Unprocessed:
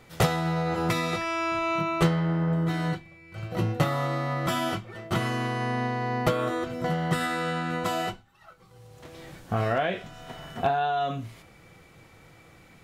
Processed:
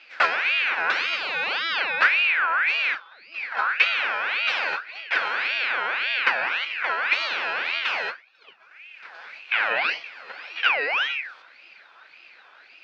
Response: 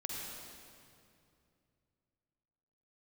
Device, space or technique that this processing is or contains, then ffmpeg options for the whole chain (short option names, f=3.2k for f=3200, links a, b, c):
voice changer toy: -af "aeval=exprs='val(0)*sin(2*PI*1900*n/s+1900*0.4/1.8*sin(2*PI*1.8*n/s))':c=same,highpass=420,equalizer=f=530:t=q:w=4:g=4,equalizer=f=800:t=q:w=4:g=3,equalizer=f=1.5k:t=q:w=4:g=9,equalizer=f=2.5k:t=q:w=4:g=9,equalizer=f=4.5k:t=q:w=4:g=4,lowpass=f=4.9k:w=0.5412,lowpass=f=4.9k:w=1.3066"